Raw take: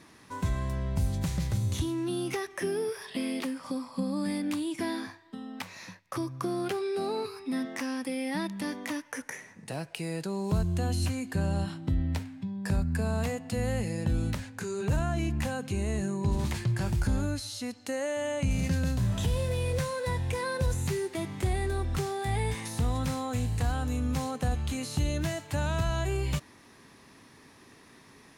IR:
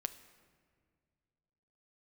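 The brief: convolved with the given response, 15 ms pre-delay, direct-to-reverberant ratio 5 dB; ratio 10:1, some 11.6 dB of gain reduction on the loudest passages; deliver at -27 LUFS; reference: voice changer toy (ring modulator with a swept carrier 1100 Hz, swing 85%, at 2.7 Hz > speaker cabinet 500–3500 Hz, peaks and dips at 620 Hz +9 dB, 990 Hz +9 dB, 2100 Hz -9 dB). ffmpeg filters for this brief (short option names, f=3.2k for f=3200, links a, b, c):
-filter_complex "[0:a]acompressor=threshold=-35dB:ratio=10,asplit=2[a][b];[1:a]atrim=start_sample=2205,adelay=15[c];[b][c]afir=irnorm=-1:irlink=0,volume=-4dB[d];[a][d]amix=inputs=2:normalize=0,aeval=exprs='val(0)*sin(2*PI*1100*n/s+1100*0.85/2.7*sin(2*PI*2.7*n/s))':c=same,highpass=500,equalizer=f=620:t=q:w=4:g=9,equalizer=f=990:t=q:w=4:g=9,equalizer=f=2.1k:t=q:w=4:g=-9,lowpass=f=3.5k:w=0.5412,lowpass=f=3.5k:w=1.3066,volume=11.5dB"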